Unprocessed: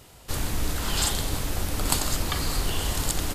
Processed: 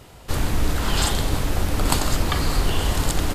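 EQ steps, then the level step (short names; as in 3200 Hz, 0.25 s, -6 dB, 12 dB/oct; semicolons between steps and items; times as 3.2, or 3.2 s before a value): high shelf 3800 Hz -8.5 dB; +6.5 dB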